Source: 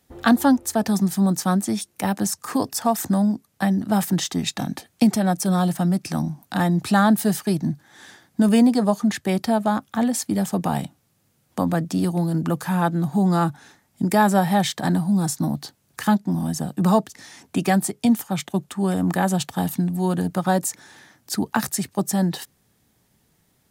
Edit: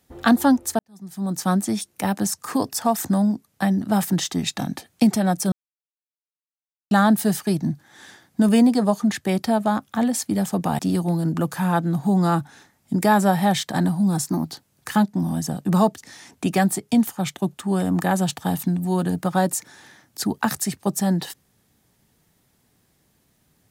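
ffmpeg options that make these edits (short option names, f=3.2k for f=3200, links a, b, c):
-filter_complex "[0:a]asplit=7[a][b][c][d][e][f][g];[a]atrim=end=0.79,asetpts=PTS-STARTPTS,afade=t=out:st=0.786:d=0.004:c=hsin[h];[b]atrim=start=0.79:end=5.52,asetpts=PTS-STARTPTS,afade=t=in:d=0.69:c=qua,afade=t=out:st=4.726:d=0.004:c=hsin[i];[c]atrim=start=5.52:end=6.91,asetpts=PTS-STARTPTS,volume=0[j];[d]atrim=start=6.91:end=10.792,asetpts=PTS-STARTPTS,afade=t=in:d=0.004:c=hsin[k];[e]atrim=start=11.878:end=15.354[l];[f]atrim=start=15.35:end=15.63,asetpts=PTS-STARTPTS,asetrate=48951,aresample=44100,atrim=end_sample=11124,asetpts=PTS-STARTPTS[m];[g]atrim=start=15.626[n];[h][i][j][k]concat=n=4:v=0:a=1[o];[o][l]acrossfade=d=0.004:c1=hsin:c2=hsin[p];[p][m]acrossfade=d=0.004:c1=hsin:c2=hsin[q];[q][n]acrossfade=d=0.004:c1=hsin:c2=hsin"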